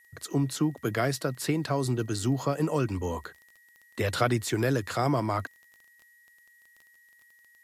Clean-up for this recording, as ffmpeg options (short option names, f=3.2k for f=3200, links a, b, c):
-af "adeclick=t=4,bandreject=f=1.9k:w=30,agate=range=-21dB:threshold=-52dB"